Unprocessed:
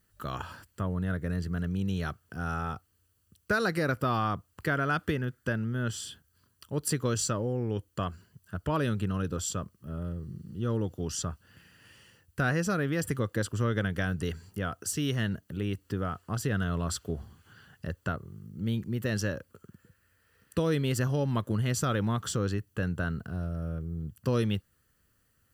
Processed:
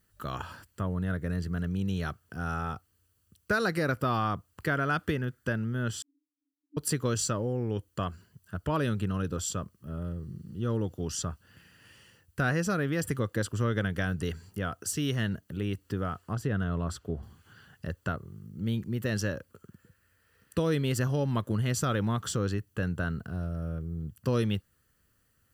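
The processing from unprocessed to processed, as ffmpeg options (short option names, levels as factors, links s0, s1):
-filter_complex "[0:a]asettb=1/sr,asplit=3[s0][s1][s2];[s0]atrim=end=6.024[s3];[s1]atrim=start=6.02:end=6.77,asetpts=PTS-STARTPTS,afade=t=in:d=0.004:c=qsin,afade=t=out:st=0.746:d=0.004:c=qsin,asuperpass=centerf=290:order=8:qfactor=6.8[s4];[s2]atrim=start=6.766[s5];[s3][s4]acrossfade=d=0.004:c1=hsin:c2=qsin[s6];[s6][s5]acrossfade=d=0.004:c1=qsin:c2=hsin,asettb=1/sr,asplit=3[s7][s8][s9];[s7]atrim=end=16.334[s10];[s8]atrim=start=16.33:end=17.23,asetpts=PTS-STARTPTS,afade=t=in:d=0.004:c=qsin,afade=t=out:st=0.896:d=0.004:c=qsin,highshelf=f=2400:g=-10[s11];[s9]atrim=start=17.226[s12];[s10][s11]acrossfade=d=0.004:c1=hsin:c2=qsin[s13];[s13][s12]acrossfade=d=0.004:c1=qsin:c2=hsin"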